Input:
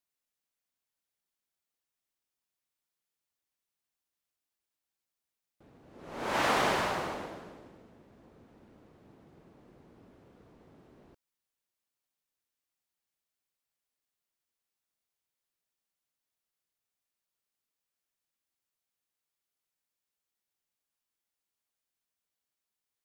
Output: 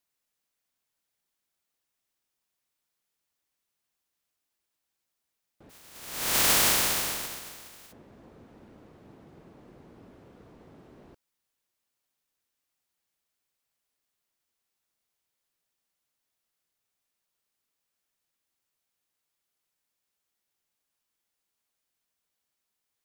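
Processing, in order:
0:05.69–0:07.91: compressing power law on the bin magnitudes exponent 0.11
level +5.5 dB

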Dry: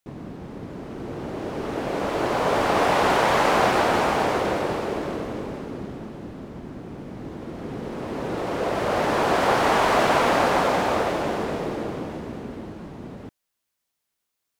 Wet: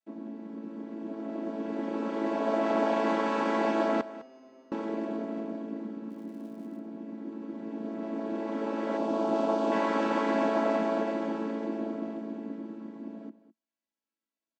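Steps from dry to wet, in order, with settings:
channel vocoder with a chord as carrier major triad, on A3
0:04.01–0:04.72: tuned comb filter 130 Hz, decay 1.5 s, mix 100%
0:06.09–0:06.78: surface crackle 250 per second −46 dBFS
0:08.97–0:09.72: parametric band 1,900 Hz −13.5 dB 0.74 octaves
single-tap delay 205 ms −16.5 dB
level −5.5 dB

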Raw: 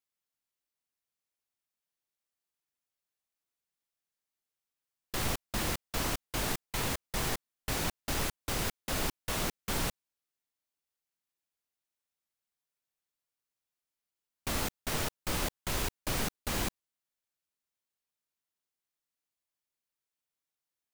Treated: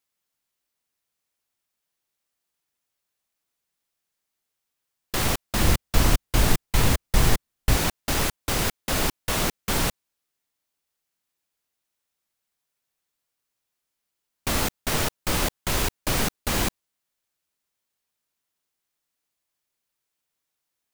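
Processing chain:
0:05.59–0:07.77: low-shelf EQ 150 Hz +11.5 dB
level +8.5 dB

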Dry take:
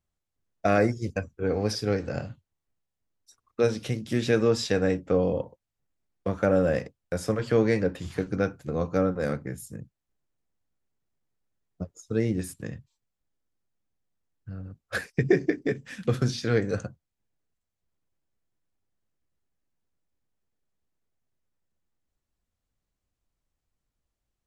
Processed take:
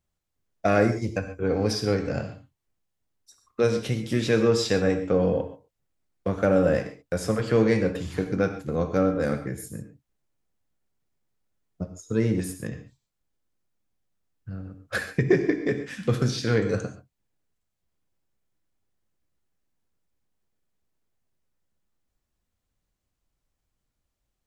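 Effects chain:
in parallel at −10 dB: soft clipping −24 dBFS, distortion −8 dB
on the sum: reverb whose tail is shaped and stops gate 160 ms flat, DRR 7.5 dB

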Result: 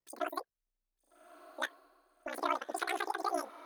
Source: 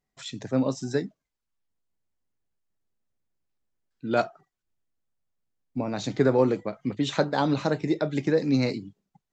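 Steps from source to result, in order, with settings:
change of speed 2.55×
ring modulation 31 Hz
feedback delay with all-pass diffusion 1,224 ms, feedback 44%, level −15.5 dB
level −8 dB

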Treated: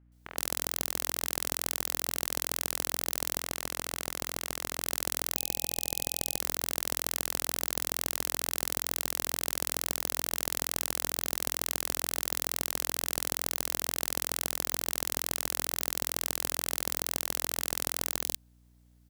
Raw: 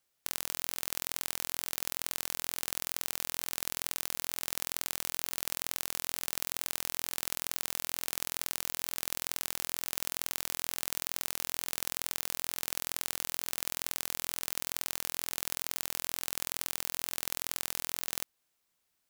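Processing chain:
high-pass filter 380 Hz 24 dB per octave
three-band delay without the direct sound mids, lows, highs 70/120 ms, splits 480/2,300 Hz
0:03.40–0:04.84: gain into a clipping stage and back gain 17.5 dB
0:05.37–0:06.39: time-frequency box erased 800–2,500 Hz
in parallel at −7 dB: decimation without filtering 33×
on the sum: mains hum 60 Hz, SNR 27 dB
level +3 dB

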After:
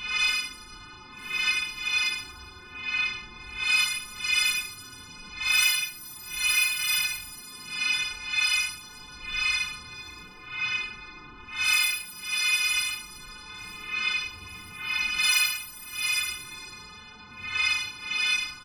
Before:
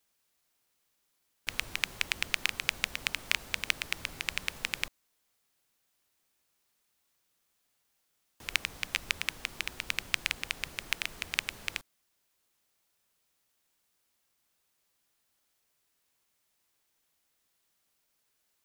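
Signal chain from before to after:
every partial snapped to a pitch grid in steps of 3 semitones
low-pass that shuts in the quiet parts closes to 400 Hz, open at −24.5 dBFS
high-shelf EQ 9,300 Hz +7 dB
hum removal 239.1 Hz, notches 23
low-pass that shuts in the quiet parts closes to 760 Hz, open at −20.5 dBFS
comb filter 0.8 ms, depth 91%
downward compressor 3 to 1, threshold −23 dBFS, peak gain reduction 7.5 dB
repeating echo 1,033 ms, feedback 36%, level −22 dB
extreme stretch with random phases 7.8×, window 0.05 s, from 0:09.42

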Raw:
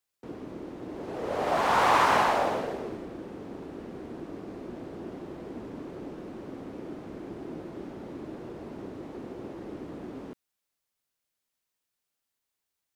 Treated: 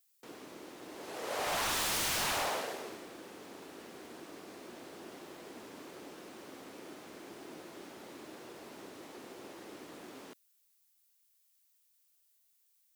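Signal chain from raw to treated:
spectral tilt +4.5 dB per octave
wave folding −24.5 dBFS
level −3.5 dB

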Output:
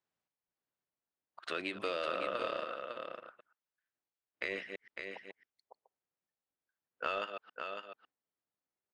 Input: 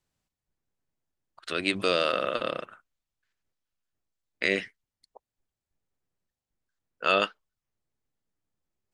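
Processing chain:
delay that plays each chunk backwards 119 ms, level −13 dB
high-pass filter 670 Hz 6 dB per octave
downward compressor 6 to 1, threshold −32 dBFS, peak gain reduction 12 dB
on a send: single-tap delay 554 ms −7 dB
on the sum: noise reduction from a noise print of the clip's start 6 dB
in parallel at −4 dB: soft clipping −34.5 dBFS, distortion −7 dB
on the sum: low-pass filter 1,500 Hz 6 dB per octave

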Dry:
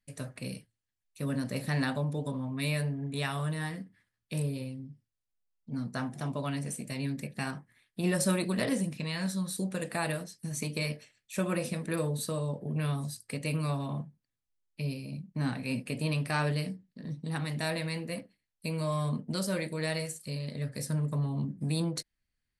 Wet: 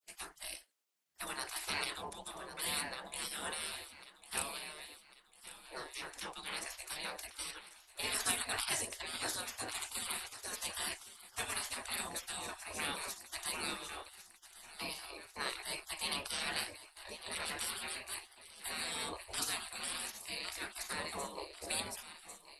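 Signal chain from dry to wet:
feedback echo with a high-pass in the loop 1,098 ms, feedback 56%, high-pass 160 Hz, level −14 dB
frequency shifter −19 Hz
gate on every frequency bin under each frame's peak −25 dB weak
level +7.5 dB

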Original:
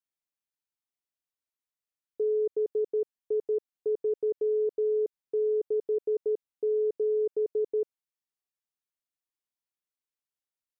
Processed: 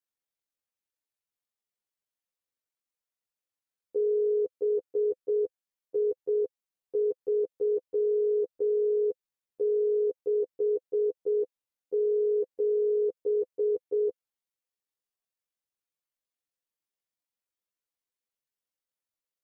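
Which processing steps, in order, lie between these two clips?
time stretch by overlap-add 1.8×, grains 44 ms
parametric band 510 Hz +6 dB 0.28 octaves

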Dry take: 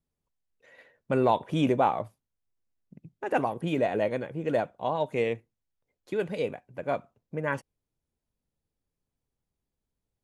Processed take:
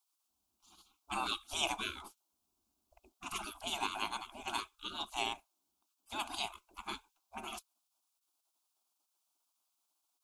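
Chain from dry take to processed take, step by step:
gate on every frequency bin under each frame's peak −25 dB weak
phaser with its sweep stopped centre 500 Hz, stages 6
level +13 dB

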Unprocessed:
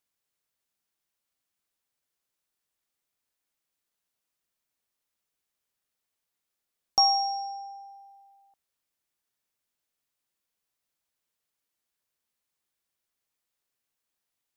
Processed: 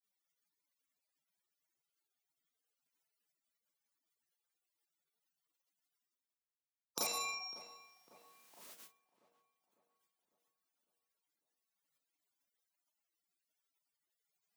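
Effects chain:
mains-hum notches 50/100/150/200/250 Hz
four-comb reverb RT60 0.66 s, combs from 30 ms, DRR −7.5 dB
reversed playback
upward compression, threshold −32 dBFS
reversed playback
harmonic generator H 5 −18 dB, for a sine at −4 dBFS
gate on every frequency bin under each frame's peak −25 dB weak
high-pass filter 150 Hz 24 dB per octave
on a send: feedback echo with a low-pass in the loop 551 ms, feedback 53%, low-pass 2,000 Hz, level −19 dB
on the sum: downward compressor 5 to 1, threshold −31 dBFS, peak gain reduction 6.5 dB
level −3 dB

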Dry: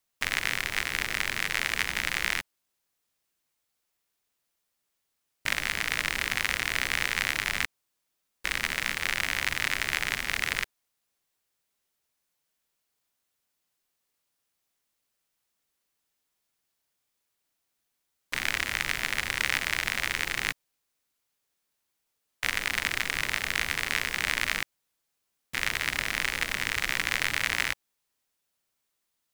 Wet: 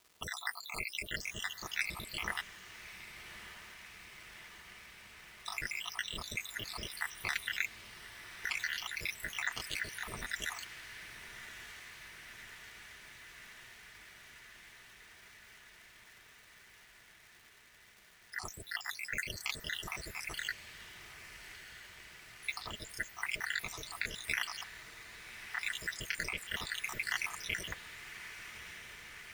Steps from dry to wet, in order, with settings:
time-frequency cells dropped at random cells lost 80%
surface crackle 400 per second −47 dBFS
notch comb filter 270 Hz
feedback delay with all-pass diffusion 1,182 ms, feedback 76%, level −12 dB
level −1.5 dB

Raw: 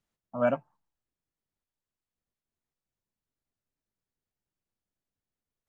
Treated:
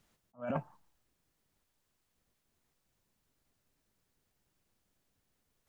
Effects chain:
compressor whose output falls as the input rises −36 dBFS, ratio −1
level that may rise only so fast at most 310 dB per second
level +4 dB

